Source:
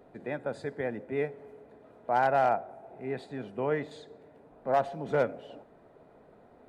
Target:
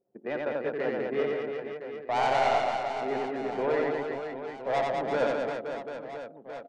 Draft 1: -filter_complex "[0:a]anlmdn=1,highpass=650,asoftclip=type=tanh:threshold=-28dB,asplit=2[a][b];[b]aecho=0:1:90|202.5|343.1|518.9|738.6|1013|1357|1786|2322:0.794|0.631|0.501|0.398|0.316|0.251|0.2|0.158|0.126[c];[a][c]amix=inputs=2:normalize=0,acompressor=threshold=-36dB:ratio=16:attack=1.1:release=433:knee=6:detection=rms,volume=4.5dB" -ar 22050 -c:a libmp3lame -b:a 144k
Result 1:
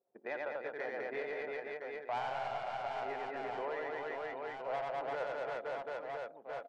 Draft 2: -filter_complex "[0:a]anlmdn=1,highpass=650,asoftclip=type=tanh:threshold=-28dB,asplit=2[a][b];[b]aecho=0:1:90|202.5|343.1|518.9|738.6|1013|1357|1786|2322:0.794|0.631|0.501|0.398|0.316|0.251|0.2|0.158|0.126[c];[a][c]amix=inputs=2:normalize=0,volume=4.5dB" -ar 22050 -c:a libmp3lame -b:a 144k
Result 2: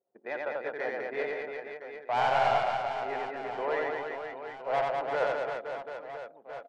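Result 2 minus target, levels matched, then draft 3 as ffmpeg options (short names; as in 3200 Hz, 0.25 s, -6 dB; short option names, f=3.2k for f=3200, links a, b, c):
250 Hz band -8.5 dB
-filter_complex "[0:a]anlmdn=1,highpass=260,asoftclip=type=tanh:threshold=-28dB,asplit=2[a][b];[b]aecho=0:1:90|202.5|343.1|518.9|738.6|1013|1357|1786|2322:0.794|0.631|0.501|0.398|0.316|0.251|0.2|0.158|0.126[c];[a][c]amix=inputs=2:normalize=0,volume=4.5dB" -ar 22050 -c:a libmp3lame -b:a 144k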